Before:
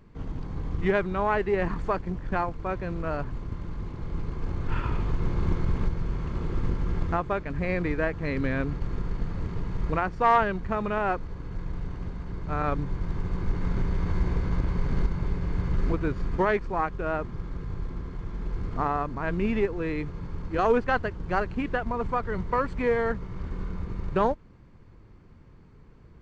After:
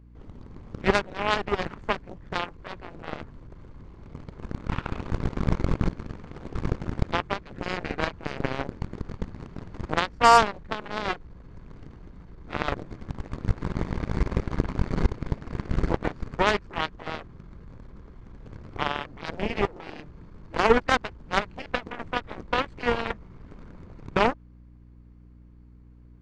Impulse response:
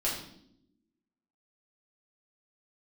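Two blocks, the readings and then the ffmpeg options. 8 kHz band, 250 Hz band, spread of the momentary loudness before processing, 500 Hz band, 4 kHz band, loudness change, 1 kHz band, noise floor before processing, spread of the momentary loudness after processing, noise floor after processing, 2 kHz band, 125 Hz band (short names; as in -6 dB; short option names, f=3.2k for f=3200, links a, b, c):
n/a, -1.5 dB, 11 LU, -1.0 dB, +13.0 dB, +1.0 dB, +2.0 dB, -51 dBFS, 22 LU, -50 dBFS, +2.5 dB, -2.5 dB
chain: -af "aeval=exprs='val(0)+0.01*(sin(2*PI*60*n/s)+sin(2*PI*2*60*n/s)/2+sin(2*PI*3*60*n/s)/3+sin(2*PI*4*60*n/s)/4+sin(2*PI*5*60*n/s)/5)':c=same,aeval=exprs='0.376*(cos(1*acos(clip(val(0)/0.376,-1,1)))-cos(1*PI/2))+0.0473*(cos(3*acos(clip(val(0)/0.376,-1,1)))-cos(3*PI/2))+0.0422*(cos(7*acos(clip(val(0)/0.376,-1,1)))-cos(7*PI/2))+0.00668*(cos(8*acos(clip(val(0)/0.376,-1,1)))-cos(8*PI/2))':c=same,volume=7dB"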